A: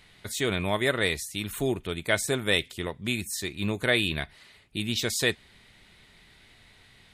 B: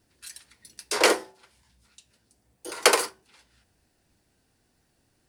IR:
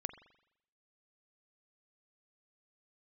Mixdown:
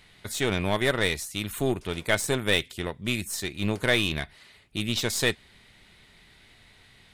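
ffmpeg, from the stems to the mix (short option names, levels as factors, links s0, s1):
-filter_complex "[0:a]volume=1.06,asplit=2[s0][s1];[1:a]acompressor=threshold=0.0562:ratio=2,adelay=900,volume=0.133[s2];[s1]apad=whole_len=272565[s3];[s2][s3]sidechaincompress=threshold=0.0251:ratio=4:attack=11:release=1250[s4];[s0][s4]amix=inputs=2:normalize=0,aeval=exprs='0.398*(cos(1*acos(clip(val(0)/0.398,-1,1)))-cos(1*PI/2))+0.0224*(cos(8*acos(clip(val(0)/0.398,-1,1)))-cos(8*PI/2))':c=same"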